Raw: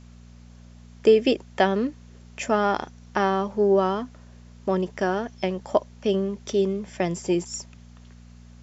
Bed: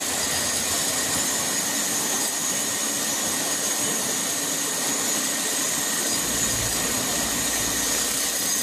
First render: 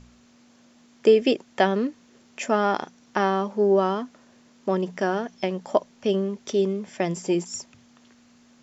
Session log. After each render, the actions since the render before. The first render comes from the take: de-hum 60 Hz, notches 3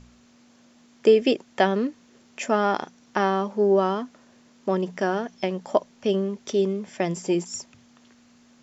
nothing audible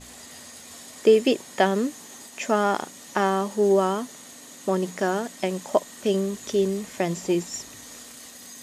add bed -19.5 dB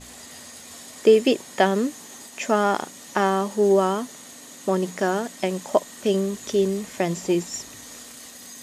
gain +1.5 dB

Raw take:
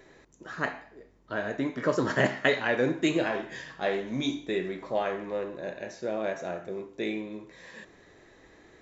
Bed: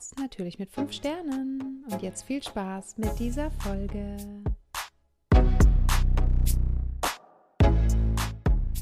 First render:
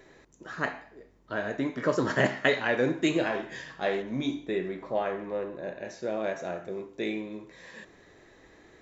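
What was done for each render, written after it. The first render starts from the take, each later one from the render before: 4.02–5.85 high shelf 3400 Hz -9.5 dB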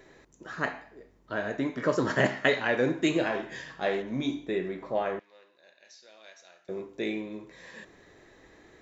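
5.19–6.69 band-pass 4600 Hz, Q 2.1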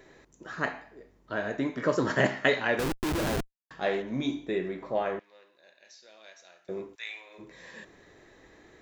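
2.79–3.71 Schmitt trigger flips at -28.5 dBFS; 6.94–7.38 HPF 1300 Hz -> 550 Hz 24 dB/oct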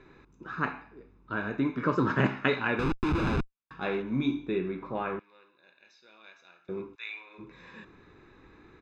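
LPF 2800 Hz 12 dB/oct; comb 0.8 ms, depth 68%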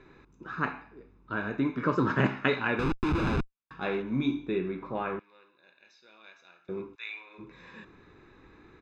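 nothing audible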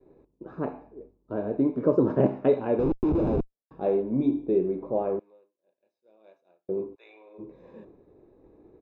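expander -50 dBFS; EQ curve 170 Hz 0 dB, 600 Hz +11 dB, 1400 Hz -17 dB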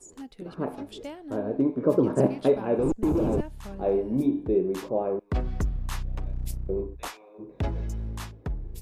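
add bed -8.5 dB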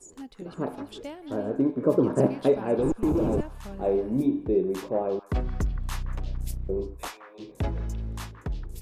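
delay with a stepping band-pass 0.173 s, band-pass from 1400 Hz, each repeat 1.4 oct, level -8 dB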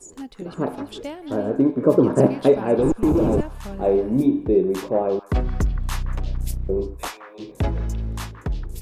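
gain +6 dB

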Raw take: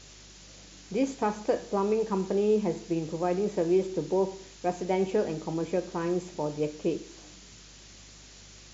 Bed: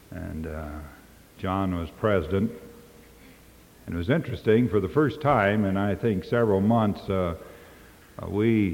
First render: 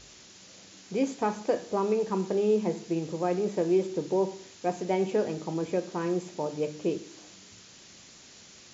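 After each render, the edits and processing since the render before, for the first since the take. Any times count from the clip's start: de-hum 50 Hz, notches 6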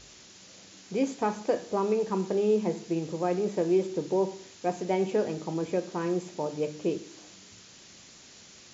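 nothing audible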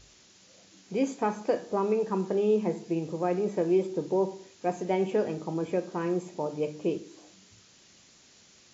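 noise print and reduce 6 dB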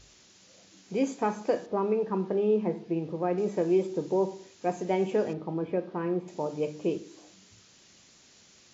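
1.66–3.38 air absorption 210 m; 5.33–6.28 air absorption 300 m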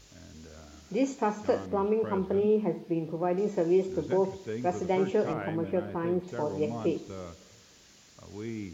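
add bed -15.5 dB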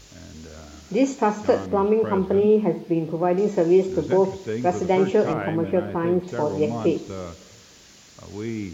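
gain +7.5 dB

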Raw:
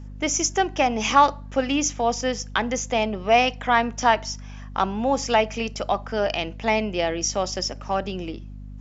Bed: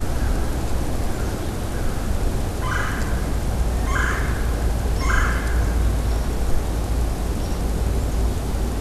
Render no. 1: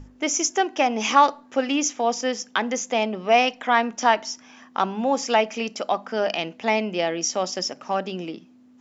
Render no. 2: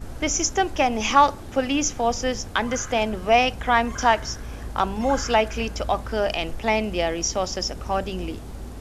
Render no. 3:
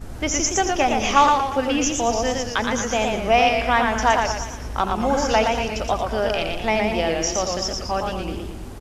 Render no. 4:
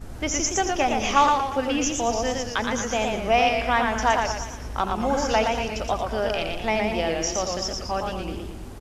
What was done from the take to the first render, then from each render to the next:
notches 50/100/150/200 Hz
add bed -13 dB
echo 86 ms -11 dB; warbling echo 0.116 s, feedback 46%, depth 118 cents, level -4 dB
gain -3 dB

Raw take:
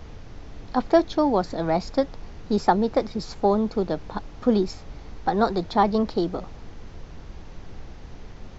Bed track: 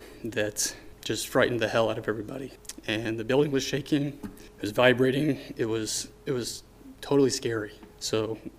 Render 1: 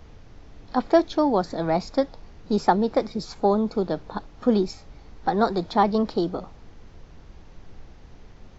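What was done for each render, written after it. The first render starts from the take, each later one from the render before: noise print and reduce 6 dB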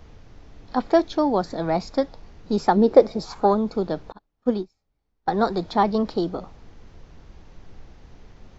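2.75–3.53 bell 270 Hz -> 1600 Hz +12.5 dB 0.95 oct; 4.12–5.28 upward expander 2.5:1, over -36 dBFS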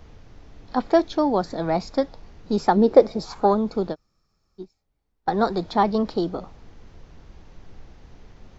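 3.93–4.61 room tone, crossfade 0.06 s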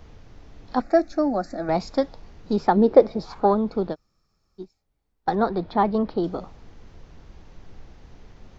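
0.8–1.69 fixed phaser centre 650 Hz, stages 8; 2.53–3.92 air absorption 140 m; 5.35–6.24 air absorption 270 m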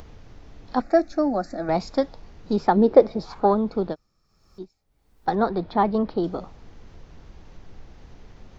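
upward compressor, threshold -40 dBFS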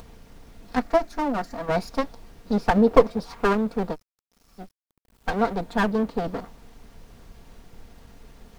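minimum comb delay 4.3 ms; bit-crush 10-bit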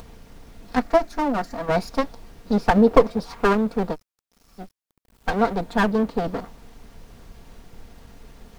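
gain +2.5 dB; limiter -2 dBFS, peak gain reduction 3 dB

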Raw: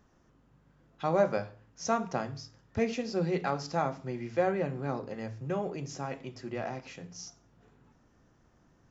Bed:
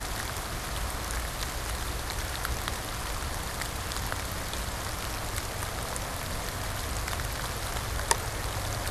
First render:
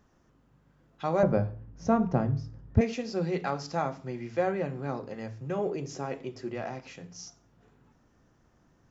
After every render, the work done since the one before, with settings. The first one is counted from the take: 1.23–2.81 tilt -4.5 dB/oct; 5.58–6.52 bell 400 Hz +7.5 dB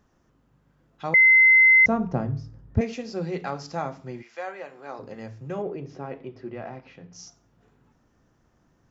1.14–1.86 bleep 2060 Hz -11.5 dBFS; 4.21–4.98 HPF 1000 Hz -> 470 Hz; 5.62–7.13 air absorption 260 m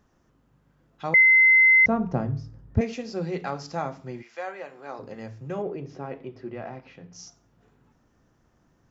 1.22–2.06 air absorption 110 m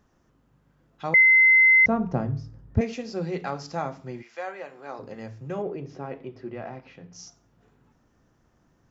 nothing audible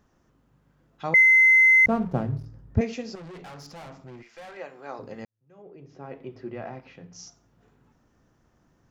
1.15–2.46 backlash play -37 dBFS; 3.15–4.57 tube stage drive 40 dB, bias 0.4; 5.25–6.32 fade in quadratic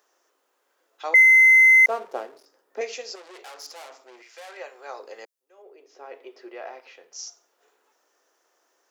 steep high-pass 390 Hz 36 dB/oct; high shelf 3800 Hz +11 dB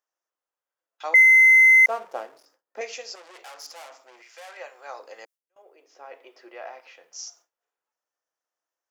gate with hold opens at -47 dBFS; thirty-one-band EQ 250 Hz -6 dB, 400 Hz -11 dB, 4000 Hz -3 dB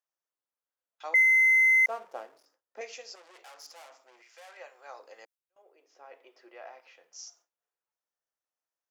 gain -7.5 dB

